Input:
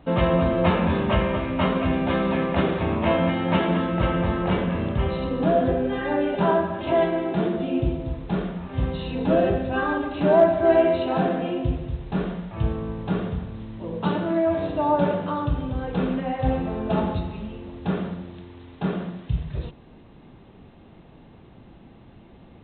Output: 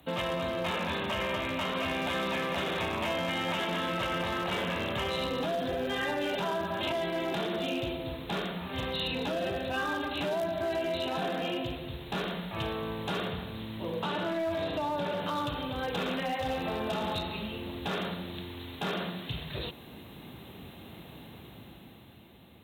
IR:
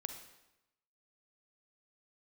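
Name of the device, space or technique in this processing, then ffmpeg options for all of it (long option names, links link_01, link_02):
FM broadcast chain: -filter_complex "[0:a]highpass=frequency=58:width=0.5412,highpass=frequency=58:width=1.3066,dynaudnorm=framelen=230:gausssize=11:maxgain=9dB,acrossover=split=220|450|3800[link_01][link_02][link_03][link_04];[link_01]acompressor=threshold=-33dB:ratio=4[link_05];[link_02]acompressor=threshold=-34dB:ratio=4[link_06];[link_03]acompressor=threshold=-23dB:ratio=4[link_07];[link_04]acompressor=threshold=-49dB:ratio=4[link_08];[link_05][link_06][link_07][link_08]amix=inputs=4:normalize=0,aemphasis=mode=production:type=75fm,alimiter=limit=-17.5dB:level=0:latency=1:release=11,asoftclip=type=hard:threshold=-19.5dB,lowpass=frequency=15000:width=0.5412,lowpass=frequency=15000:width=1.3066,aemphasis=mode=production:type=75fm,asettb=1/sr,asplit=3[link_09][link_10][link_11];[link_09]atrim=end=13.284[link_12];[link_10]atrim=start=13.28:end=15.24,asetpts=PTS-STARTPTS,afade=type=in:duration=0.004:curve=qsin,afade=type=out:start_time=1.956:duration=0.004:curve=qsin,acrossover=split=3700[link_13][link_14];[link_14]acompressor=threshold=-45dB:ratio=4:attack=1:release=60[link_15];[link_13][link_15]amix=inputs=2:normalize=0[link_16];[link_11]atrim=start=15.236[link_17];[link_12][link_16]acrossfade=duration=0.004:curve1=hsin:curve2=qsin[link_18];[link_18][link_17]acrossfade=duration=0.004:curve1=qsin:curve2=hsin,volume=-6dB"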